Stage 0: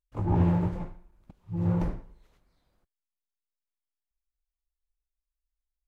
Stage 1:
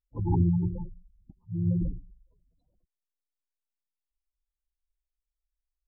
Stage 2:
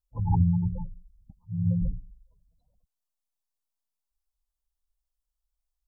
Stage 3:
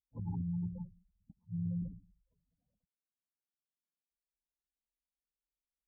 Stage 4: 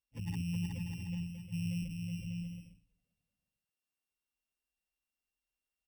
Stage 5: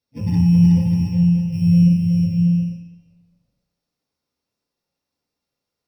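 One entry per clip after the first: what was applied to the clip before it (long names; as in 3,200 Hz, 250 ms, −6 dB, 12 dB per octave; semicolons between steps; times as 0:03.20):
gate on every frequency bin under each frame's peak −15 dB strong
phaser with its sweep stopped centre 830 Hz, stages 4; level +3.5 dB
downward compressor, threshold −26 dBFS, peak gain reduction 9 dB; resonant band-pass 250 Hz, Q 1.5; level −1 dB
samples sorted by size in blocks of 16 samples; bouncing-ball delay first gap 370 ms, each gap 0.6×, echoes 5
convolution reverb RT60 1.0 s, pre-delay 3 ms, DRR −5 dB; level +1.5 dB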